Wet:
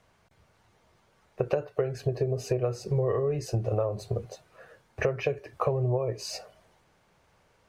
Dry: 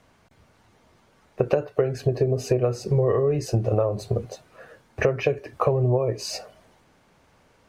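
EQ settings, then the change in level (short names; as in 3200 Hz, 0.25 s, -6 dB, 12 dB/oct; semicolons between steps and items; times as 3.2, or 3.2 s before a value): bell 260 Hz -7.5 dB 0.52 oct; -5.0 dB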